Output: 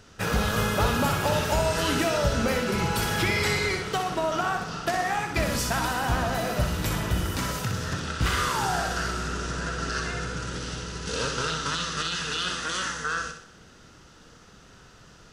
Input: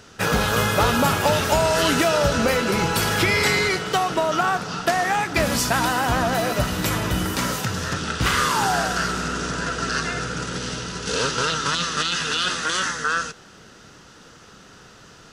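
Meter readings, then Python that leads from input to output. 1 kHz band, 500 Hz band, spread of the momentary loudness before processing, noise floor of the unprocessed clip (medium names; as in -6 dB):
-6.0 dB, -5.5 dB, 7 LU, -47 dBFS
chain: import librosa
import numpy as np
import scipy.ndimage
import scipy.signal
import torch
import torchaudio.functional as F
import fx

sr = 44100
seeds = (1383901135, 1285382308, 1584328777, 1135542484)

p1 = fx.low_shelf(x, sr, hz=93.0, db=11.0)
p2 = p1 + fx.room_flutter(p1, sr, wall_m=10.7, rt60_s=0.55, dry=0)
y = p2 * 10.0 ** (-7.0 / 20.0)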